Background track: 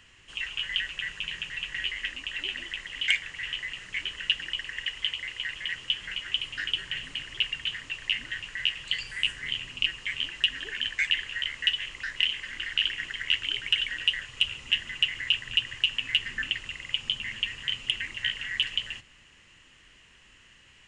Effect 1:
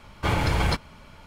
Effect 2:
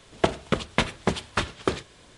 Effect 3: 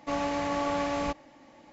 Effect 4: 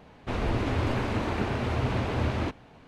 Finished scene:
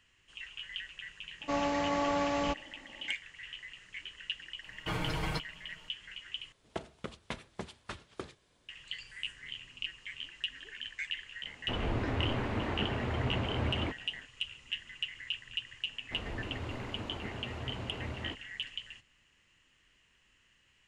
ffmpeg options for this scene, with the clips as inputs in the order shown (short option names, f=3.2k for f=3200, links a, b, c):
-filter_complex "[4:a]asplit=2[a][b];[0:a]volume=-12dB[c];[1:a]aecho=1:1:6.4:0.79[d];[a]acrossover=split=3600[e][f];[f]acompressor=threshold=-57dB:ratio=4:attack=1:release=60[g];[e][g]amix=inputs=2:normalize=0[h];[c]asplit=2[i][j];[i]atrim=end=6.524[k];[2:a]atrim=end=2.17,asetpts=PTS-STARTPTS,volume=-17.5dB[l];[j]atrim=start=8.686[m];[3:a]atrim=end=1.72,asetpts=PTS-STARTPTS,volume=-1.5dB,afade=t=in:d=0.004:c=hsin,afade=t=out:st=1.716:d=0.004:c=hsin,adelay=1410[n];[d]atrim=end=1.26,asetpts=PTS-STARTPTS,volume=-12.5dB,afade=t=in:d=0.004:c=hsin,afade=t=out:st=1.256:d=0.004:c=hsin,adelay=4630[o];[h]atrim=end=2.87,asetpts=PTS-STARTPTS,volume=-5.5dB,afade=t=in:d=0.05,afade=t=out:st=2.82:d=0.05,adelay=11410[p];[b]atrim=end=2.87,asetpts=PTS-STARTPTS,volume=-13dB,afade=t=in:d=0.004:c=hsin,afade=t=out:st=2.866:d=0.004:c=hsin,adelay=15840[q];[k][l]acrossfade=d=0.004:c1=hsin:c2=hsin[r];[r][m]acrossfade=d=0.004:c1=hsin:c2=hsin[s];[s][n][o][p][q]amix=inputs=5:normalize=0"